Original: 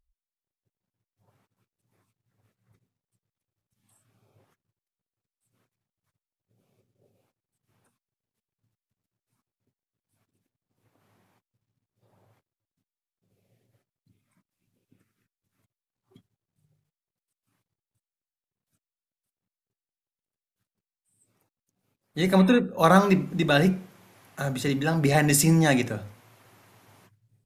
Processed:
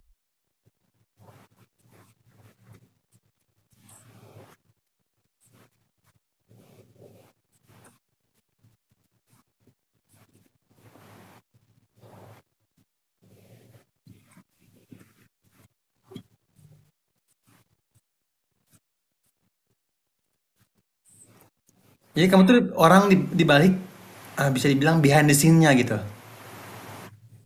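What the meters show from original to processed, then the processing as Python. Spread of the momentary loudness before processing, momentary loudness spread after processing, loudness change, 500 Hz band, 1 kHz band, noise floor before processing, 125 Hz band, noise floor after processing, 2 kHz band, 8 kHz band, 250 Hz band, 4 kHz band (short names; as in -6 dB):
14 LU, 12 LU, +3.5 dB, +4.0 dB, +3.5 dB, under -85 dBFS, +3.5 dB, -79 dBFS, +4.0 dB, +0.5 dB, +3.5 dB, +3.5 dB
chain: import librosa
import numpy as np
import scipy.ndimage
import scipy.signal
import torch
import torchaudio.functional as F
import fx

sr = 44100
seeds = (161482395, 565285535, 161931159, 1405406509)

y = fx.band_squash(x, sr, depth_pct=40)
y = F.gain(torch.from_numpy(y), 4.0).numpy()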